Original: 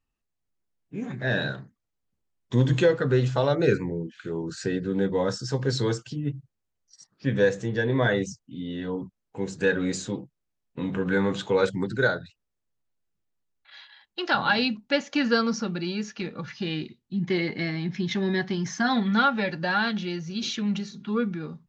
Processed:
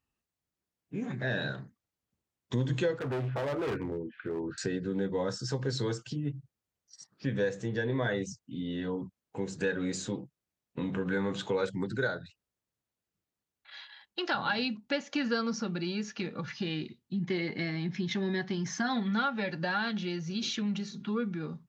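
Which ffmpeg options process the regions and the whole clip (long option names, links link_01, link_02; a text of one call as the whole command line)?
ffmpeg -i in.wav -filter_complex "[0:a]asettb=1/sr,asplit=3[link_01][link_02][link_03];[link_01]atrim=end=2.994[link_04];[link_02]atrim=start=2.99:end=4.58,asetpts=PTS-STARTPTS,afade=type=in:duration=0.004:curve=qsin,afade=type=out:start_time=1.586:duration=0.004:curve=qsin,lowpass=frequency=2500:width=0.5412,lowpass=frequency=2500:width=1.3066,equalizer=frequency=170:width_type=o:width=0.26:gain=-10,asoftclip=type=hard:threshold=-26dB[link_05];[link_03]atrim=start=4.576[link_06];[link_04][link_05]acrossfade=duration=0.004:curve1=hsin:curve2=qsin[link_07];[link_07][link_06]acrossfade=duration=0.004:curve1=qsin:curve2=hsin,highpass=61,acompressor=threshold=-33dB:ratio=2" out.wav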